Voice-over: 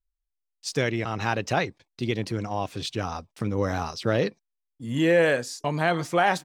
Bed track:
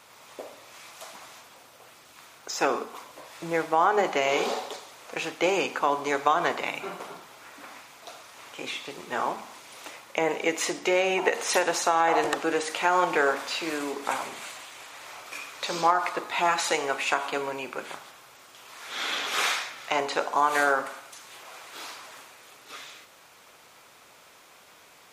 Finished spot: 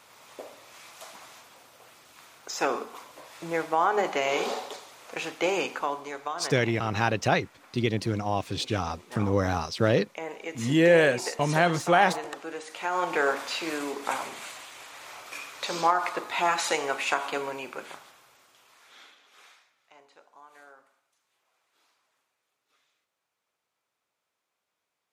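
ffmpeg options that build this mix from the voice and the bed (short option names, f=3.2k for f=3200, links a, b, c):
-filter_complex "[0:a]adelay=5750,volume=1dB[a];[1:a]volume=8dB,afade=t=out:st=5.64:d=0.48:silence=0.354813,afade=t=in:st=12.7:d=0.6:silence=0.316228,afade=t=out:st=17.32:d=1.83:silence=0.0375837[b];[a][b]amix=inputs=2:normalize=0"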